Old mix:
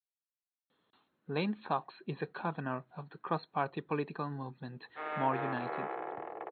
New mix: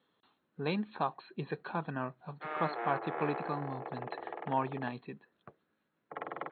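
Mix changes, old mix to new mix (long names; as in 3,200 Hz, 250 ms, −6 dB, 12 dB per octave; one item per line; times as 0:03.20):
speech: entry −0.70 s
background: entry −2.55 s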